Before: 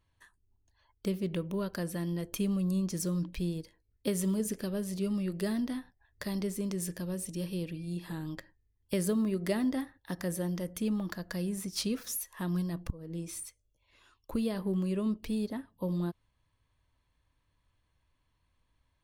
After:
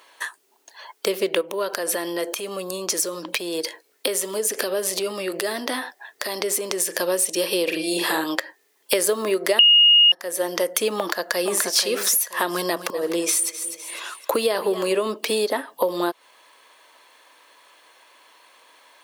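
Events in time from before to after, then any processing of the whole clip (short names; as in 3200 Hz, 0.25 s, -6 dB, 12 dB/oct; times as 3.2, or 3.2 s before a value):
1.41–6.96 compressor 10:1, threshold -40 dBFS
7.63–8.24 doubler 44 ms -3.5 dB
9.59–10.12 bleep 2860 Hz -11 dBFS
10.97–11.66 echo throw 0.48 s, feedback 15%, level -5 dB
12.51–14.99 feedback echo 0.252 s, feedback 39%, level -16 dB
whole clip: HPF 430 Hz 24 dB/oct; compressor 4:1, threshold -50 dBFS; maximiser +30.5 dB; gain -1 dB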